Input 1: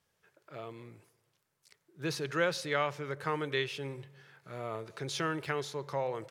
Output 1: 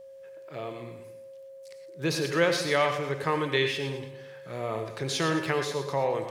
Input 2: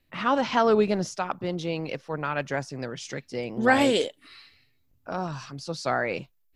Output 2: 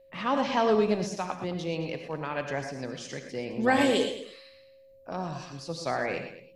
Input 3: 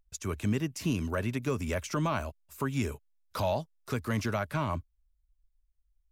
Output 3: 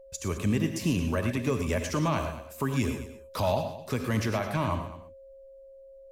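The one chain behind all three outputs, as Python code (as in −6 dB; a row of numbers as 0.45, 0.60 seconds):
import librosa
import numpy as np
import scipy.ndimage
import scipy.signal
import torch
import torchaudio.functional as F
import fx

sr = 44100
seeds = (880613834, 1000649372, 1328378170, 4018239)

y = fx.rev_gated(x, sr, seeds[0], gate_ms=140, shape='rising', drr_db=6.0)
y = y + 10.0 ** (-51.0 / 20.0) * np.sin(2.0 * np.pi * 540.0 * np.arange(len(y)) / sr)
y = fx.peak_eq(y, sr, hz=1400.0, db=-8.5, octaves=0.2)
y = y + 10.0 ** (-15.5 / 20.0) * np.pad(y, (int(215 * sr / 1000.0), 0))[:len(y)]
y = y * 10.0 ** (-30 / 20.0) / np.sqrt(np.mean(np.square(y)))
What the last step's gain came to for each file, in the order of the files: +6.5, −3.5, +2.5 decibels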